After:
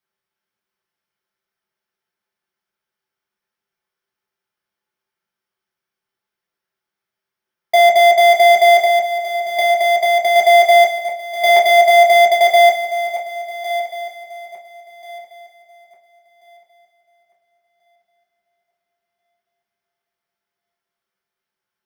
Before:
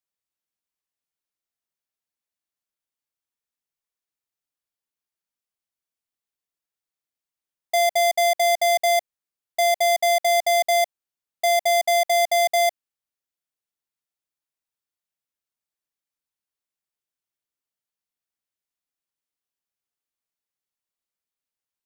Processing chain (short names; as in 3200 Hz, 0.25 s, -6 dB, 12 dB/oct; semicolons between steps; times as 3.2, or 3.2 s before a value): regenerating reverse delay 0.693 s, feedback 47%, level -12 dB; 8.82–10.36 compressor, threshold -23 dBFS, peak gain reduction 5.5 dB; 11.56–12.41 gate with hold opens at -17 dBFS; reverb RT60 0.35 s, pre-delay 4 ms, DRR -3 dB